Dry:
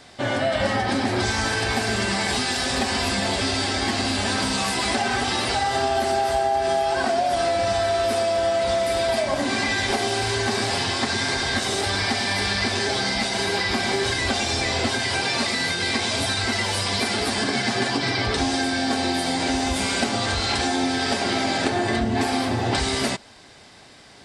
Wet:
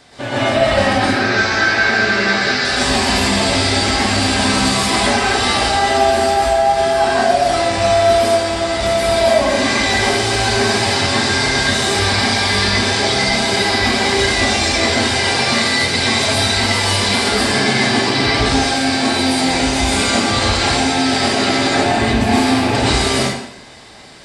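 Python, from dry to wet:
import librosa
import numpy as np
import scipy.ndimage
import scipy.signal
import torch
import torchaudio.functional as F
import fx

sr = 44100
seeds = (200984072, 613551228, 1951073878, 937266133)

y = fx.rattle_buzz(x, sr, strikes_db=-30.0, level_db=-24.0)
y = fx.cabinet(y, sr, low_hz=140.0, low_slope=12, high_hz=5500.0, hz=(250.0, 910.0, 1500.0, 3100.0), db=(-5, -8, 9, -5), at=(1.0, 2.65))
y = fx.rev_plate(y, sr, seeds[0], rt60_s=0.8, hf_ratio=0.8, predelay_ms=105, drr_db=-7.5)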